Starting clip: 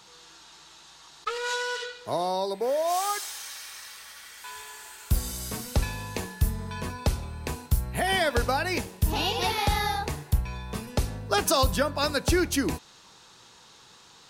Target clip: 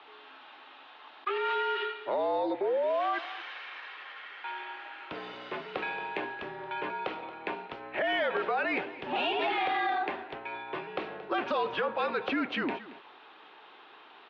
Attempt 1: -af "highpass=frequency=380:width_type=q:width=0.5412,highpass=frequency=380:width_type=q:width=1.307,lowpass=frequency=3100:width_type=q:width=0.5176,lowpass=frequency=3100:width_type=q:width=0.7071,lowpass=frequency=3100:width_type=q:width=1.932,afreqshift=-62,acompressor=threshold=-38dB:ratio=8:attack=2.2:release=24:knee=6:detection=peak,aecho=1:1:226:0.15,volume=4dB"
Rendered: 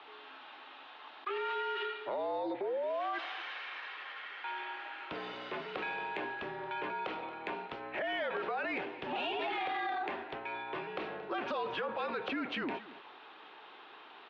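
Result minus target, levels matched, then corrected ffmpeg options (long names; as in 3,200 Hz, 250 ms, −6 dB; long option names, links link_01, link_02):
downward compressor: peak gain reduction +6.5 dB
-af "highpass=frequency=380:width_type=q:width=0.5412,highpass=frequency=380:width_type=q:width=1.307,lowpass=frequency=3100:width_type=q:width=0.5176,lowpass=frequency=3100:width_type=q:width=0.7071,lowpass=frequency=3100:width_type=q:width=1.932,afreqshift=-62,acompressor=threshold=-30.5dB:ratio=8:attack=2.2:release=24:knee=6:detection=peak,aecho=1:1:226:0.15,volume=4dB"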